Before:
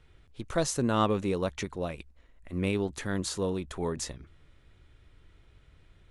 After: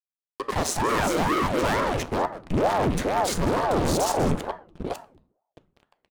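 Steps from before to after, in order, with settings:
delay that plays each chunk backwards 451 ms, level −2 dB
single-tap delay 198 ms −16 dB
high-pass filter sweep 390 Hz → 97 Hz, 0:01.56–0:02.27
in parallel at −7 dB: dead-zone distortion −43 dBFS
on the sum: harmonic and percussive parts rebalanced percussive −6 dB
low-shelf EQ 88 Hz +11 dB
notch filter 2,200 Hz
fuzz pedal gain 33 dB, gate −42 dBFS
speech leveller within 4 dB 2 s
on a send at −10.5 dB: parametric band 950 Hz +14 dB 0.6 octaves + convolution reverb RT60 0.50 s, pre-delay 3 ms
on the sum: ring modulator whose carrier an LFO sweeps 440 Hz, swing 85%, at 2.2 Hz
level −6 dB

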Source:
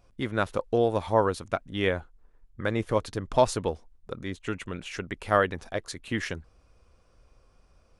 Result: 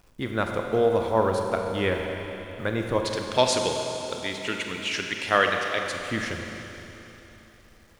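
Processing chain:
0:03.05–0:05.86: meter weighting curve D
bit-depth reduction 10 bits, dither none
four-comb reverb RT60 3.5 s, combs from 32 ms, DRR 2.5 dB

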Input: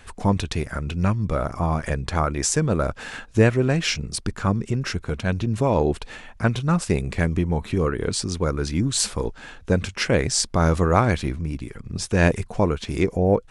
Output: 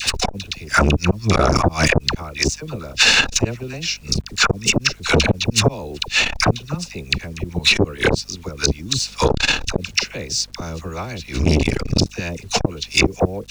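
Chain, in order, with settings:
running median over 3 samples
flat-topped bell 4,100 Hz +14 dB
notch filter 3,200 Hz, Q 6
gate with flip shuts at −12 dBFS, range −31 dB
all-pass dispersion lows, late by 63 ms, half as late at 820 Hz
bit reduction 12 bits
mains hum 50 Hz, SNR 34 dB
boost into a limiter +21.5 dB
saturating transformer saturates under 320 Hz
level −1 dB

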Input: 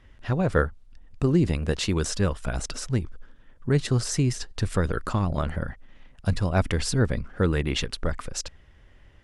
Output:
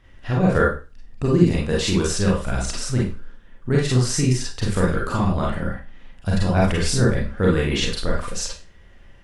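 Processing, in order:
four-comb reverb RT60 0.33 s, combs from 32 ms, DRR −4 dB

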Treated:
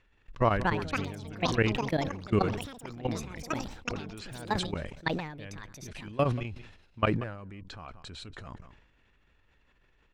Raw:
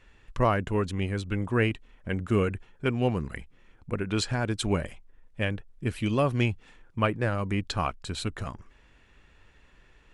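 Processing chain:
low-pass filter 5,800 Hz 12 dB per octave
output level in coarse steps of 22 dB
single-tap delay 184 ms −23 dB
delay with pitch and tempo change per echo 373 ms, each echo +7 semitones, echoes 2
level that may fall only so fast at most 66 dB per second

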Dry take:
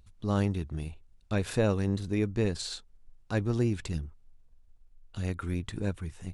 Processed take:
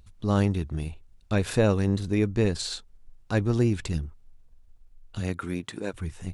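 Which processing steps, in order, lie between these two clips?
0:05.19–0:05.93: high-pass filter 87 Hz → 360 Hz 12 dB per octave
level +4.5 dB

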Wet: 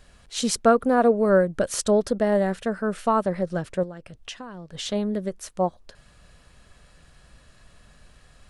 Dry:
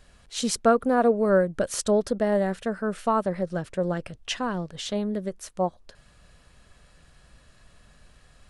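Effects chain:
0:03.83–0:04.71: downward compressor 10 to 1, threshold −37 dBFS, peak gain reduction 14.5 dB
level +2 dB

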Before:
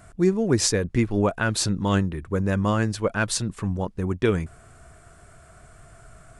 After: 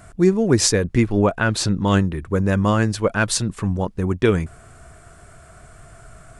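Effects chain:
0:01.12–0:01.88: high-shelf EQ 7,300 Hz −9 dB
level +4.5 dB

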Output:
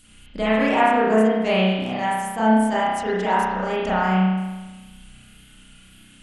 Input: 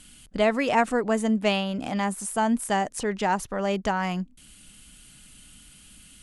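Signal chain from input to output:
tape wow and flutter 55 cents
spring reverb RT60 1.2 s, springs 32 ms, chirp 80 ms, DRR −9.5 dB
level −5 dB

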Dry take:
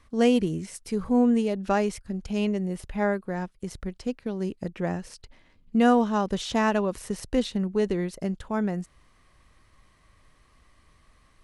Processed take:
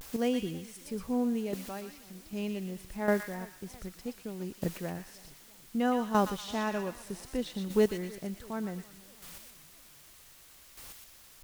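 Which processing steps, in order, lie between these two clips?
0:01.55–0:02.32: transistor ladder low-pass 5,300 Hz, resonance 45%
bit-depth reduction 8 bits, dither triangular
square-wave tremolo 0.65 Hz, depth 65%, duty 10%
on a send: delay with a high-pass on its return 120 ms, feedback 35%, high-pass 1,700 Hz, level −4 dB
on the sum: pitch vibrato 0.39 Hz 43 cents
feedback echo with a swinging delay time 329 ms, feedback 56%, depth 193 cents, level −23 dB

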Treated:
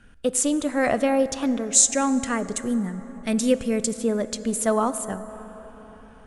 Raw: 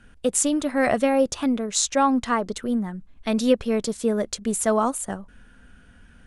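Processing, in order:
0:01.73–0:03.94: octave-band graphic EQ 125/1,000/2,000/4,000/8,000 Hz +5/−8/+4/−6/+12 dB
dense smooth reverb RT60 4.8 s, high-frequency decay 0.35×, pre-delay 0 ms, DRR 12.5 dB
level −1 dB

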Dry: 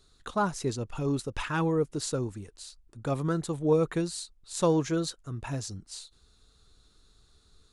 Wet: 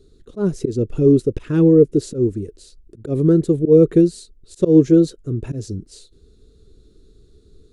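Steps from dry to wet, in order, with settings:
volume swells 116 ms
low shelf with overshoot 600 Hz +13.5 dB, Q 3
level −1.5 dB

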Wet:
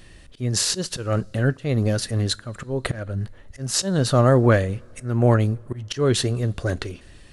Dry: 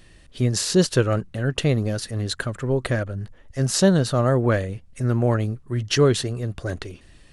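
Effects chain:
volume swells 260 ms
coupled-rooms reverb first 0.21 s, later 2.9 s, from −22 dB, DRR 18 dB
level +3.5 dB

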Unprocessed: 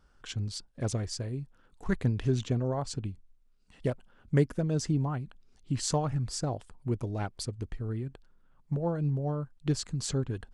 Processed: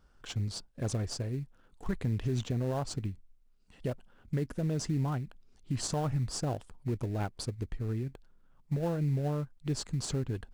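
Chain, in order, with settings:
in parallel at −12 dB: sample-rate reduction 2,200 Hz, jitter 20%
on the sum: brickwall limiter −22 dBFS, peak gain reduction 11 dB
level −1.5 dB

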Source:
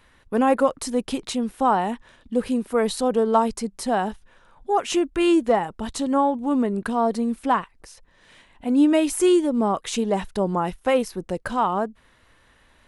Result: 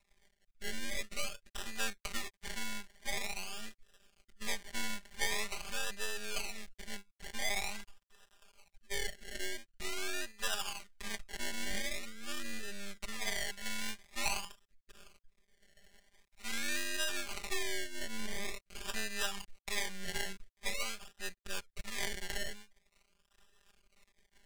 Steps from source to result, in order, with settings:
half-wave rectification
low-shelf EQ 130 Hz −2 dB
sample-and-hold swept by an LFO 28×, swing 60% 0.87 Hz
downward compressor 6 to 1, threshold −24 dBFS, peak gain reduction 8.5 dB
rotating-speaker cabinet horn 0.65 Hz, later 5.5 Hz, at 0:09.77
time stretch by overlap-add 1.9×, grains 21 ms
octave-band graphic EQ 125/250/500/1,000/2,000/4,000/8,000 Hz −9/−11/−9/−5/+6/+3/+6 dB
level −1.5 dB

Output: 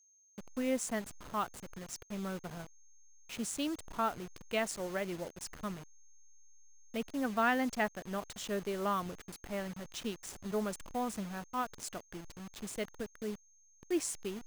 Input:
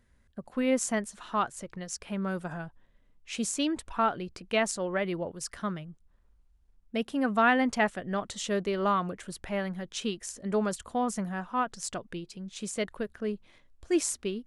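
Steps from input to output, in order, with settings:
hold until the input has moved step −36.5 dBFS
steady tone 6,400 Hz −58 dBFS
level −6.5 dB

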